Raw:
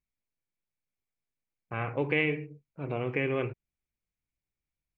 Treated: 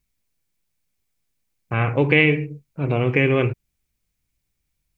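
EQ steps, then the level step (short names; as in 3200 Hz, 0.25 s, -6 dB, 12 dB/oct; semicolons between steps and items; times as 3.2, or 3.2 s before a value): low shelf 280 Hz +8.5 dB; high shelf 2400 Hz +8.5 dB; +7.5 dB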